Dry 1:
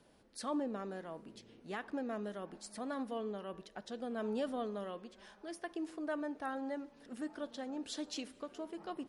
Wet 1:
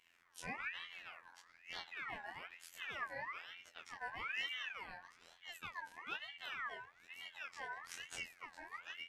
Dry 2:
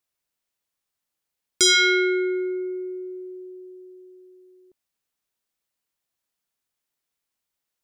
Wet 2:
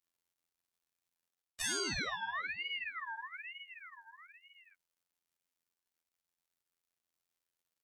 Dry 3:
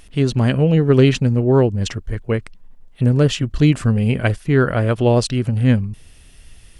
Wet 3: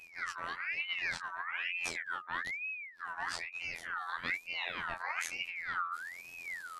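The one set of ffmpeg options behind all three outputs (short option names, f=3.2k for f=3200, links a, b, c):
-af "areverse,acompressor=threshold=-30dB:ratio=5,areverse,afftfilt=real='hypot(re,im)*cos(PI*b)':imag='0':win_size=2048:overlap=0.75,flanger=delay=19:depth=7.1:speed=2.7,aeval=exprs='val(0)*sin(2*PI*1900*n/s+1900*0.35/1.1*sin(2*PI*1.1*n/s))':c=same,volume=3.5dB"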